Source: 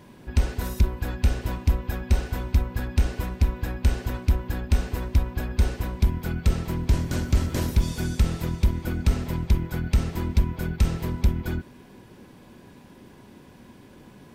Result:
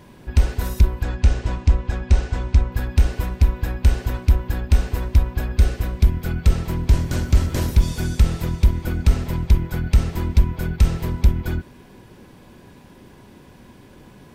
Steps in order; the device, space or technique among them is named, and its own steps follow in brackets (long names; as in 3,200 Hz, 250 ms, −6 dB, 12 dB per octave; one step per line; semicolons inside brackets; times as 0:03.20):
0:01.03–0:02.72: Chebyshev low-pass filter 7,500 Hz, order 3
0:05.57–0:06.29: notch filter 920 Hz, Q 5.7
low shelf boost with a cut just above (low-shelf EQ 65 Hz +5.5 dB; parametric band 240 Hz −2.5 dB)
level +3 dB